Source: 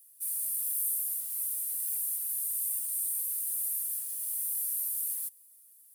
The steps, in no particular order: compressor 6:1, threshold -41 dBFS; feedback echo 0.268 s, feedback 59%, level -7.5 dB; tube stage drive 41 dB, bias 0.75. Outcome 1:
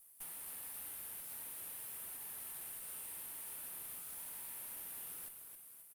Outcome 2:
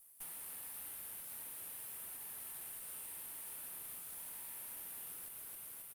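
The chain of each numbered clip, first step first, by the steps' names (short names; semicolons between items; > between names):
compressor > feedback echo > tube stage; feedback echo > compressor > tube stage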